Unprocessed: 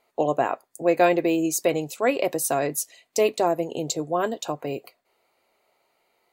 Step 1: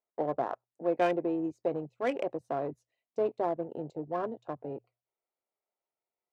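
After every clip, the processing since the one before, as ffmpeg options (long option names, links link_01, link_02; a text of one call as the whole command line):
ffmpeg -i in.wav -af "afwtdn=0.0447,bandreject=frequency=60:width_type=h:width=6,bandreject=frequency=120:width_type=h:width=6,adynamicsmooth=sensitivity=2.5:basefreq=2200,volume=-8.5dB" out.wav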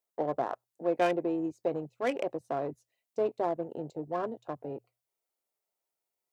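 ffmpeg -i in.wav -af "highshelf=frequency=4800:gain=9" out.wav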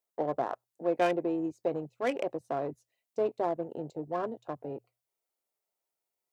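ffmpeg -i in.wav -af anull out.wav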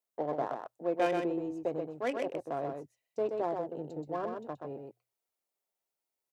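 ffmpeg -i in.wav -af "aecho=1:1:127:0.562,volume=-3dB" out.wav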